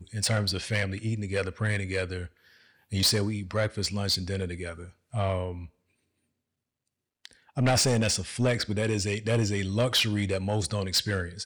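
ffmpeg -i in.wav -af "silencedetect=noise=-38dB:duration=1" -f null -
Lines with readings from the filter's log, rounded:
silence_start: 5.66
silence_end: 7.25 | silence_duration: 1.60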